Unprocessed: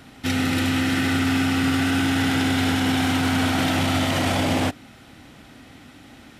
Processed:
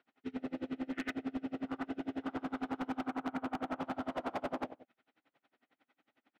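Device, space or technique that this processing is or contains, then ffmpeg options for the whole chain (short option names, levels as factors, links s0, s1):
helicopter radio: -filter_complex "[0:a]asettb=1/sr,asplit=3[s0][s1][s2];[s0]atrim=end=3.074[s3];[s1]atrim=start=3.07:end=3.79,asetpts=PTS-STARTPTS,afade=t=in:d=0.004:c=qsin,afade=t=out:st=0.716:d=0.004:c=qsin,lowpass=2800[s4];[s2]atrim=start=3.786[s5];[s3][s4]acrossfade=d=0.004:c1=hsin:c2=qsin[s6];[s6][s5]acrossfade=d=0.004:c1=qsin:c2=hsin,afwtdn=0.0708,highpass=380,lowpass=2700,aecho=1:1:46|145:0.211|0.1,aeval=exprs='val(0)*pow(10,-30*(0.5-0.5*cos(2*PI*11*n/s))/20)':c=same,asoftclip=type=hard:threshold=0.0376,volume=0.708"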